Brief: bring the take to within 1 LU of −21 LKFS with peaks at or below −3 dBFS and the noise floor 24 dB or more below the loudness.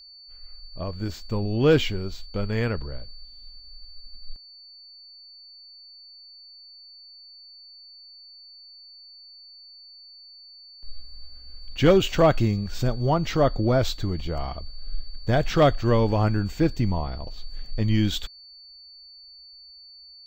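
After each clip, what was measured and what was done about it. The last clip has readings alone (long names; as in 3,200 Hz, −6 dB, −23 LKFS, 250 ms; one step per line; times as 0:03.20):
interfering tone 4,500 Hz; level of the tone −45 dBFS; integrated loudness −24.0 LKFS; sample peak −9.0 dBFS; target loudness −21.0 LKFS
→ notch filter 4,500 Hz, Q 30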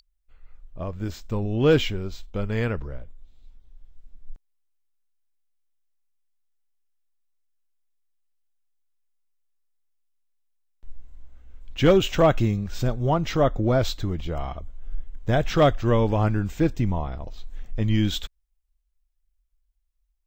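interfering tone none found; integrated loudness −24.0 LKFS; sample peak −9.0 dBFS; target loudness −21.0 LKFS
→ level +3 dB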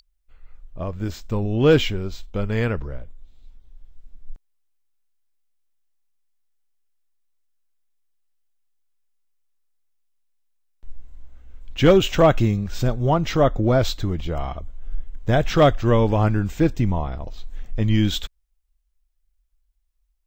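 integrated loudness −21.0 LKFS; sample peak −6.0 dBFS; background noise floor −69 dBFS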